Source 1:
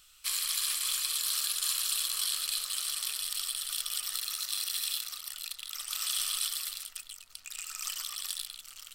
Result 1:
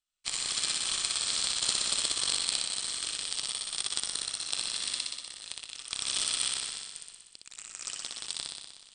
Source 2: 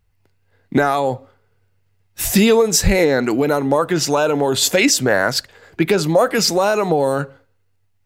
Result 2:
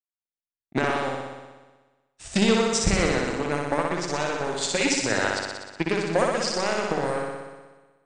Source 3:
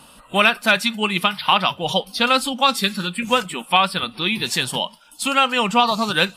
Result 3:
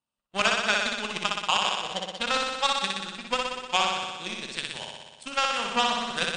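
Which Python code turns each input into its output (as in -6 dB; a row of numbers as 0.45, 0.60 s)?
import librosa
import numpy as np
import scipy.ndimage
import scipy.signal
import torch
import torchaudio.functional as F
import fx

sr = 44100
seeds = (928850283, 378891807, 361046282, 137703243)

y = fx.power_curve(x, sr, exponent=2.0)
y = fx.brickwall_lowpass(y, sr, high_hz=9400.0)
y = fx.room_flutter(y, sr, wall_m=10.5, rt60_s=1.3)
y = y * 10.0 ** (-6 / 20.0) / np.max(np.abs(y))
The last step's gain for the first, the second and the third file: +12.0, -4.5, -3.5 dB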